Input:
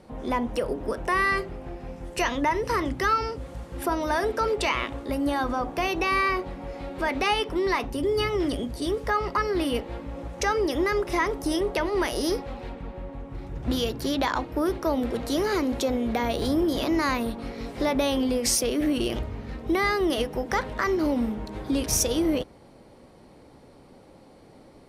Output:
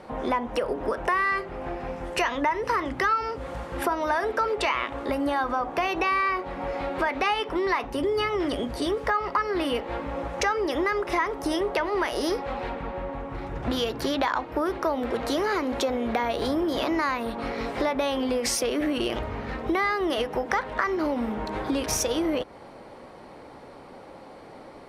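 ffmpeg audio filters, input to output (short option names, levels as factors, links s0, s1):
-af "equalizer=f=1200:w=0.34:g=12.5,acompressor=threshold=0.0631:ratio=3,volume=0.891"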